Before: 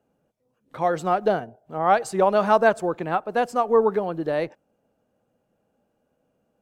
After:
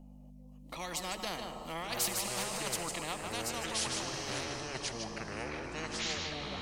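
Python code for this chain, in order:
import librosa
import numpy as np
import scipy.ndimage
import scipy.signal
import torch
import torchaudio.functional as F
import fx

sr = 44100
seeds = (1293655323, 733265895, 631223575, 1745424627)

y = fx.doppler_pass(x, sr, speed_mps=9, closest_m=1.6, pass_at_s=2.18)
y = fx.over_compress(y, sr, threshold_db=-32.0, ratio=-1.0)
y = fx.add_hum(y, sr, base_hz=50, snr_db=28)
y = fx.fixed_phaser(y, sr, hz=410.0, stages=6)
y = fx.echo_pitch(y, sr, ms=755, semitones=-7, count=3, db_per_echo=-3.0)
y = fx.notch(y, sr, hz=3500.0, q=16.0)
y = y + 10.0 ** (-12.5 / 20.0) * np.pad(y, (int(153 * sr / 1000.0), 0))[:len(y)]
y = fx.rev_plate(y, sr, seeds[0], rt60_s=4.9, hf_ratio=0.8, predelay_ms=0, drr_db=16.0)
y = fx.spectral_comp(y, sr, ratio=4.0)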